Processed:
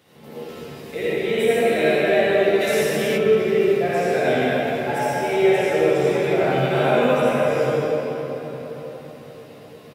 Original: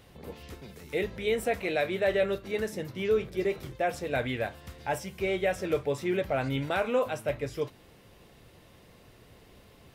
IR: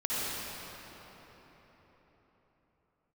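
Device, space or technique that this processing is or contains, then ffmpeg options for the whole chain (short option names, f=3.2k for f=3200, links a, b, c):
cathedral: -filter_complex "[1:a]atrim=start_sample=2205[a];[0:a][a]afir=irnorm=-1:irlink=0,highpass=f=120:w=0.5412,highpass=f=120:w=1.3066,asplit=3[b][c][d];[b]afade=t=out:st=2.6:d=0.02[e];[c]highshelf=f=3.1k:g=11.5,afade=t=in:st=2.6:d=0.02,afade=t=out:st=3.16:d=0.02[f];[d]afade=t=in:st=3.16:d=0.02[g];[e][f][g]amix=inputs=3:normalize=0,asplit=2[h][i];[i]adelay=13,volume=-5dB[j];[h][j]amix=inputs=2:normalize=0"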